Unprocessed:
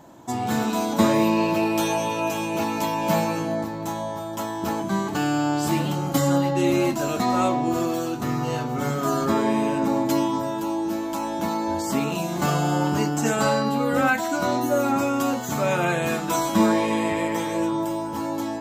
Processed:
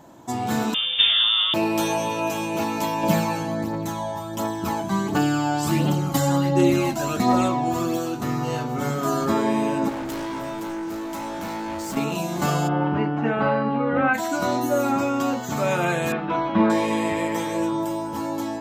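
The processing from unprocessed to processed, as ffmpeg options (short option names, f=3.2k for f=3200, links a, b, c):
-filter_complex "[0:a]asettb=1/sr,asplit=3[a][b][c];[a]atrim=end=0.744[d];[b]atrim=start=0.74:end=1.54,asetpts=PTS-STARTPTS,afade=t=in:d=0.004:c=qsin,afade=t=out:st=0.796:d=0.004:c=qsin,lowpass=f=3.2k:t=q:w=0.5098,lowpass=f=3.2k:t=q:w=0.6013,lowpass=f=3.2k:t=q:w=0.9,lowpass=f=3.2k:t=q:w=2.563,afreqshift=-3800[e];[c]atrim=start=1.536[f];[d][e]acrossfade=d=0.004:c1=hsin:c2=qsin[g];[g][f]acrossfade=d=0.004:c1=qsin:c2=hsin,asettb=1/sr,asplit=3[h][i][j];[h]atrim=end=3.034[k];[i]atrim=start=3.03:end=7.97,asetpts=PTS-STARTPTS,afade=t=in:d=0.004:c=qsin,afade=t=out:st=4.936:d=0.004:c=qsin,aphaser=in_gain=1:out_gain=1:delay=1.4:decay=0.43:speed=1.4:type=triangular[l];[j]atrim=start=7.966[m];[k][l]acrossfade=d=0.004:c1=hsin:c2=qsin[n];[n][m]acrossfade=d=0.004:c1=qsin:c2=hsin,asettb=1/sr,asplit=3[o][p][q];[o]atrim=end=9.894[r];[p]atrim=start=9.89:end=11.97,asetpts=PTS-STARTPTS,afade=t=in:d=0.004:c=qsin,afade=t=out:st=2.076:d=0.004:c=qsin,asoftclip=type=hard:threshold=-28dB[s];[q]atrim=start=11.966[t];[r][s]acrossfade=d=0.004:c1=hsin:c2=qsin[u];[u][t]acrossfade=d=0.004:c1=qsin:c2=hsin,asplit=3[v][w][x];[v]afade=t=out:st=12.67:d=0.02[y];[w]lowpass=f=2.6k:w=0.5412,lowpass=f=2.6k:w=1.3066,afade=t=in:st=12.67:d=0.02,afade=t=out:st=14.13:d=0.02[z];[x]afade=t=in:st=14.13:d=0.02[aa];[y][z][aa]amix=inputs=3:normalize=0,asettb=1/sr,asplit=3[ab][ac][ad];[ab]atrim=end=14.964[ae];[ac]atrim=start=14.96:end=15.57,asetpts=PTS-STARTPTS,afade=t=in:d=0.004:c=qsin,afade=t=out:st=0.606:d=0.004:c=qsin,equalizer=f=11k:t=o:w=0.85:g=-10.5[af];[ad]atrim=start=15.566[ag];[ae][af]acrossfade=d=0.004:c1=hsin:c2=qsin[ah];[ah][ag]acrossfade=d=0.004:c1=qsin:c2=hsin,asettb=1/sr,asplit=3[ai][aj][ak];[ai]atrim=end=16.124[al];[aj]atrim=start=16.12:end=16.7,asetpts=PTS-STARTPTS,afade=t=in:d=0.004:c=qsin,afade=t=out:st=0.576:d=0.004:c=qsin,lowpass=f=2.9k:w=0.5412,lowpass=f=2.9k:w=1.3066[am];[ak]atrim=start=16.696[an];[al][am]acrossfade=d=0.004:c1=hsin:c2=qsin[ao];[ao][an]acrossfade=d=0.004:c1=qsin:c2=hsin"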